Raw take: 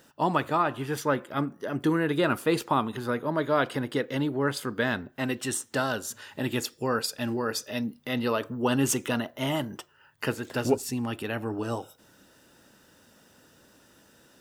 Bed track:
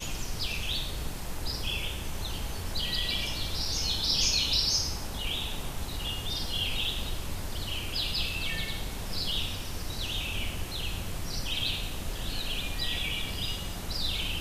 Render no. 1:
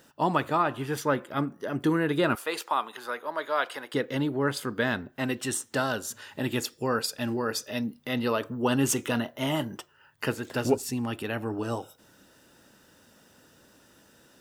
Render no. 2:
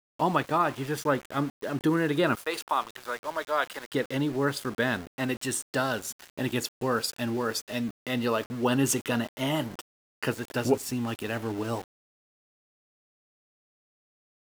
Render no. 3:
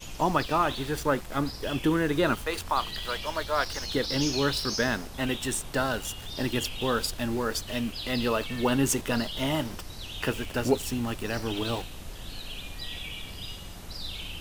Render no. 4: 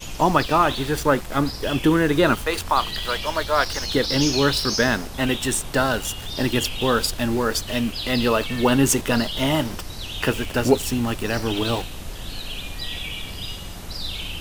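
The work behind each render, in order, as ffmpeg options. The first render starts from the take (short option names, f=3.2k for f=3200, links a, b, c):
-filter_complex "[0:a]asettb=1/sr,asplit=3[a][b][c];[a]atrim=end=2.354[d];[b]atrim=start=2.35:end=3.94,asetpts=PTS-STARTPTS,afade=t=in:d=0.004:c=qsin,afade=t=out:st=1.586:d=0.004:c=qsin,highpass=680[e];[c]atrim=start=3.936[f];[d][e]acrossfade=d=0.004:c1=hsin:c2=qsin[g];[g][f]acrossfade=d=0.004:c1=qsin:c2=hsin,asettb=1/sr,asplit=3[h][i][j];[h]atrim=end=8.944[k];[i]atrim=start=8.94:end=9.75,asetpts=PTS-STARTPTS,afade=t=in:d=0.004:c=qsin,afade=t=out:st=0.806:d=0.004:c=qsin,asplit=2[l][m];[m]adelay=26,volume=-13dB[n];[l][n]amix=inputs=2:normalize=0,atrim=end_sample=35721[o];[j]atrim=start=9.746[p];[k][o]acrossfade=d=0.004:c1=hsin:c2=qsin[q];[q][p]acrossfade=d=0.004:c1=qsin:c2=hsin"
-af "aeval=exprs='val(0)*gte(abs(val(0)),0.0112)':c=same"
-filter_complex "[1:a]volume=-6dB[a];[0:a][a]amix=inputs=2:normalize=0"
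-af "volume=7dB"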